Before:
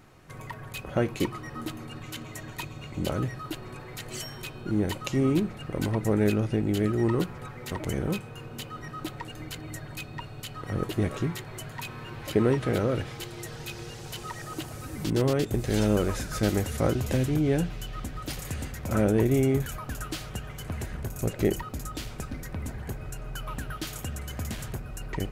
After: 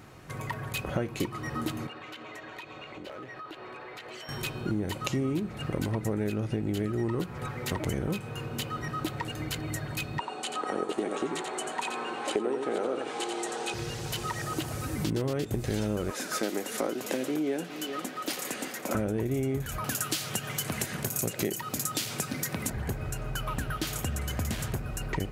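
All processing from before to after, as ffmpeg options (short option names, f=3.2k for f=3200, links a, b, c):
-filter_complex "[0:a]asettb=1/sr,asplit=3[a][b][c];[a]atrim=end=1.874[d];[b]atrim=start=1.87:end=4.29,asetpts=PTS-STARTPTS,afade=t=in:d=0.004:c=qsin,afade=t=out:st=2.416:d=0.004:c=qsin,acrossover=split=330 4100:gain=0.1 1 0.112[e][f][g];[e][f][g]amix=inputs=3:normalize=0,asoftclip=type=hard:threshold=-29.5dB,acompressor=threshold=-44dB:ratio=6:attack=3.2:release=140:knee=1:detection=peak[h];[c]atrim=start=4.286[i];[d][h]acrossfade=d=0.004:c1=hsin:c2=qsin[j];[j][i]acrossfade=d=0.004:c1=qsin:c2=hsin,asettb=1/sr,asplit=3[k][l][m];[k]atrim=end=10.194[n];[l]atrim=start=10.19:end=13.74,asetpts=PTS-STARTPTS,afade=t=in:d=0.004:c=qsin,afade=t=out:st=3.546:d=0.004:c=qsin,highpass=f=250:w=0.5412,highpass=f=250:w=1.3066,equalizer=f=410:t=q:w=4:g=4,equalizer=f=800:t=q:w=4:g=9,equalizer=f=1.2k:t=q:w=4:g=3,equalizer=f=2k:t=q:w=4:g=-3,equalizer=f=5.1k:t=q:w=4:g=-5,equalizer=f=8.6k:t=q:w=4:g=7,lowpass=f=9.1k:w=0.5412,lowpass=f=9.1k:w=1.3066,aecho=1:1:88:0.473,atrim=end_sample=156555[o];[m]atrim=start=13.736[p];[n][o]acrossfade=d=0.004:c1=hsin:c2=qsin[q];[q][p]acrossfade=d=0.004:c1=qsin:c2=hsin,asettb=1/sr,asplit=3[r][s][t];[r]atrim=end=16.104[u];[s]atrim=start=16.1:end=18.95,asetpts=PTS-STARTPTS,afade=t=in:d=0.004:c=qsin,afade=t=out:st=2.846:d=0.004:c=qsin,highpass=f=250:w=0.5412,highpass=f=250:w=1.3066,aecho=1:1:406:0.15,atrim=end_sample=125685[v];[t]atrim=start=18.946[w];[u][v]acrossfade=d=0.004:c1=hsin:c2=qsin[x];[x][w]acrossfade=d=0.004:c1=qsin:c2=hsin,asettb=1/sr,asplit=3[y][z][aa];[y]atrim=end=19.844[ab];[z]atrim=start=19.84:end=22.7,asetpts=PTS-STARTPTS,afade=t=in:d=0.004:c=qsin,afade=t=out:st=2.856:d=0.004:c=qsin,highpass=f=120:w=0.5412,highpass=f=120:w=1.3066,highshelf=f=2.7k:g=11.5,acompressor=mode=upward:threshold=-36dB:ratio=2.5:attack=3.2:release=140:knee=2.83:detection=peak[ac];[aa]atrim=start=22.696[ad];[ab][ac]acrossfade=d=0.004:c1=hsin:c2=qsin[ae];[ae][ad]acrossfade=d=0.004:c1=qsin:c2=hsin,highpass=44,acompressor=threshold=-32dB:ratio=6,volume=5dB"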